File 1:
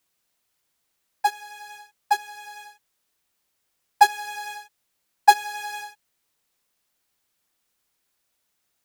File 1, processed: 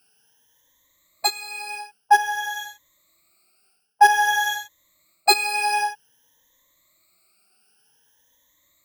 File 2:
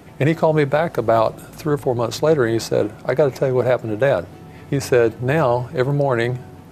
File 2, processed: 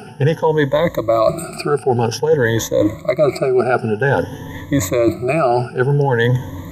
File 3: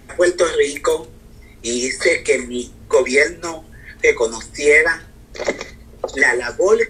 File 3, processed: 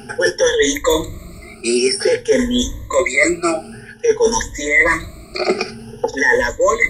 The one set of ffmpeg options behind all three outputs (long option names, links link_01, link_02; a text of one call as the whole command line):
ffmpeg -i in.wav -af "afftfilt=real='re*pow(10,23/40*sin(2*PI*(1.1*log(max(b,1)*sr/1024/100)/log(2)-(0.52)*(pts-256)/sr)))':imag='im*pow(10,23/40*sin(2*PI*(1.1*log(max(b,1)*sr/1024/100)/log(2)-(0.52)*(pts-256)/sr)))':win_size=1024:overlap=0.75,areverse,acompressor=threshold=-18dB:ratio=5,areverse,volume=5.5dB" out.wav